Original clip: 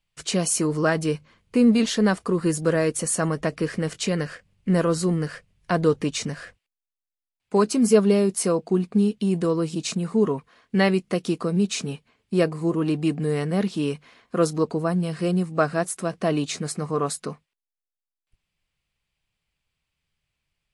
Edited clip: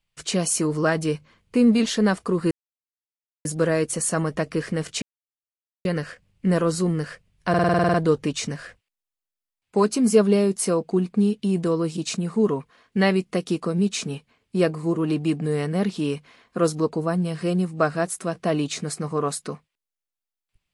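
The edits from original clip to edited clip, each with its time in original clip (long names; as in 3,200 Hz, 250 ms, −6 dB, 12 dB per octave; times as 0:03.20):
0:02.51: splice in silence 0.94 s
0:04.08: splice in silence 0.83 s
0:05.72: stutter 0.05 s, 10 plays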